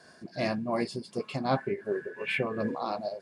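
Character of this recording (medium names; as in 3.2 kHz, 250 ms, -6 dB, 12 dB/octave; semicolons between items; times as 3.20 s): tremolo triangle 2.7 Hz, depth 55%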